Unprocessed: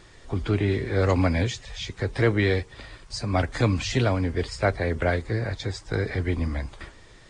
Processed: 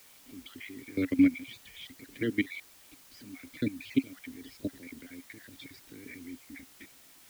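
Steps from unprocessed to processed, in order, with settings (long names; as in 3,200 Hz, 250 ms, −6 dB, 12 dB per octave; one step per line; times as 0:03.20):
time-frequency cells dropped at random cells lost 29%
output level in coarse steps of 21 dB
formant filter i
background noise white −66 dBFS
level +9 dB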